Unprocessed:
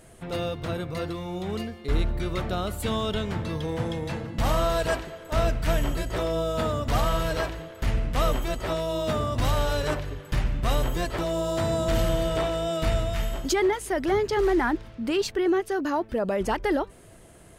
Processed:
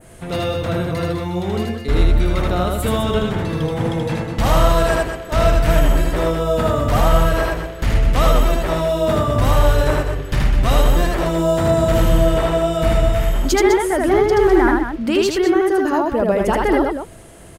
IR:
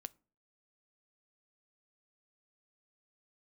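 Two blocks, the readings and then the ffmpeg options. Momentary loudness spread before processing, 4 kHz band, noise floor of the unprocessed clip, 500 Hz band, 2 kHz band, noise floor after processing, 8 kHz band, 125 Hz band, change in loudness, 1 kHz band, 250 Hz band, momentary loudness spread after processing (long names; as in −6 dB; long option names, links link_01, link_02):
7 LU, +6.0 dB, −49 dBFS, +9.5 dB, +8.5 dB, −32 dBFS, +7.5 dB, +10.0 dB, +9.5 dB, +9.0 dB, +9.5 dB, 7 LU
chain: -af "adynamicequalizer=threshold=0.00398:dfrequency=4500:dqfactor=0.78:tfrequency=4500:tqfactor=0.78:attack=5:release=100:ratio=0.375:range=3.5:mode=cutabove:tftype=bell,aecho=1:1:78.72|204.1:0.794|0.398,volume=7dB"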